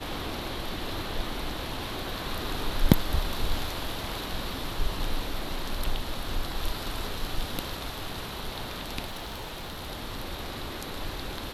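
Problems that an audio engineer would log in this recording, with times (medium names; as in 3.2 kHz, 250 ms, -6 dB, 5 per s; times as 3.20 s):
9.06–9.88 s: clipped -32.5 dBFS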